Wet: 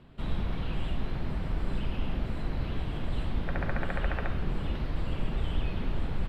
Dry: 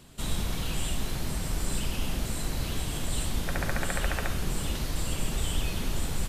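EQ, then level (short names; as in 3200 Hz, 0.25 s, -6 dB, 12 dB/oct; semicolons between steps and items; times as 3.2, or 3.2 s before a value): air absorption 420 m; 0.0 dB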